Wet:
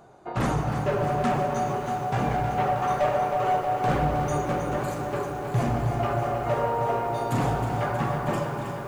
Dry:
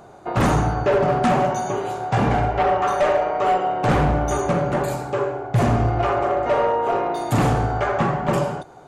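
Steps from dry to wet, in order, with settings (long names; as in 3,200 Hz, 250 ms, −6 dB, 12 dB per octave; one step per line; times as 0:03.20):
reverb reduction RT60 0.53 s
on a send at −4 dB: convolution reverb RT60 3.0 s, pre-delay 6 ms
on the sum: feedback echo at a low word length 317 ms, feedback 80%, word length 7 bits, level −8.5 dB
level −7.5 dB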